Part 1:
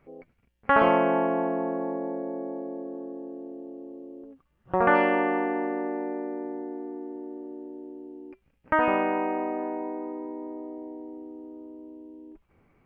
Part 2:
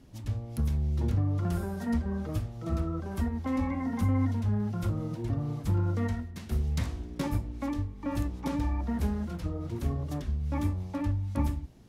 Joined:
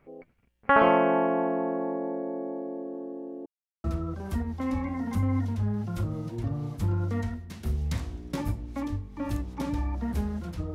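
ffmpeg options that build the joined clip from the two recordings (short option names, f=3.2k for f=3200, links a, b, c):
-filter_complex "[0:a]apad=whole_dur=10.74,atrim=end=10.74,asplit=2[a][b];[a]atrim=end=3.46,asetpts=PTS-STARTPTS,afade=t=out:st=3.456:d=0.004:c=hsin[c];[b]atrim=start=3.46:end=3.84,asetpts=PTS-STARTPTS,volume=0[d];[1:a]atrim=start=2.7:end=9.6,asetpts=PTS-STARTPTS,afade=t=in:d=0.004:c=hsin[e];[c][d][e]concat=n=3:v=0:a=1"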